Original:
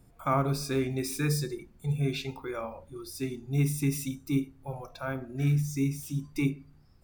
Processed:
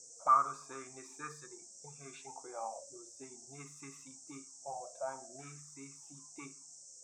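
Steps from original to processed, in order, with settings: auto-wah 480–1200 Hz, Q 7.8, up, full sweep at -26 dBFS; band noise 5.5–8.3 kHz -61 dBFS; trim +6 dB

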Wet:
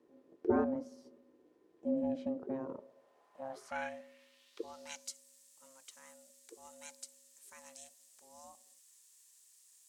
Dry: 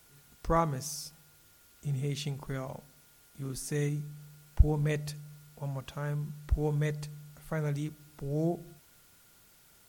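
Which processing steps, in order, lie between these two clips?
ring modulator 400 Hz; band-pass sweep 340 Hz -> 7.7 kHz, 2.56–5.16 s; trim +8 dB

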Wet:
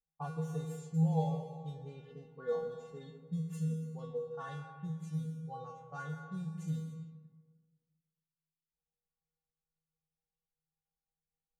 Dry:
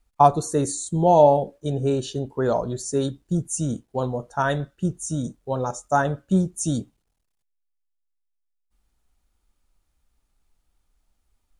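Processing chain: median filter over 9 samples; feedback comb 160 Hz, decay 0.54 s, harmonics odd, mix 100%; plate-style reverb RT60 1.6 s, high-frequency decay 0.8×, pre-delay 110 ms, DRR 8 dB; level-controlled noise filter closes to 940 Hz, open at -37 dBFS; 2.10–4.49 s: comb 4.4 ms, depth 67%

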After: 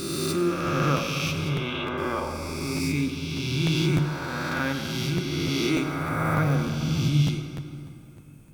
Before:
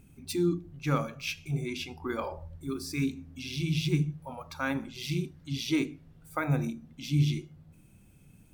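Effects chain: reverse spectral sustain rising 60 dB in 2.75 s; 1.49–1.98 s: steep low-pass 3.8 kHz 96 dB/octave; plate-style reverb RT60 3 s, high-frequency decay 0.55×, DRR 5.5 dB; crackling interface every 0.30 s, samples 512, repeat, from 0.66 s

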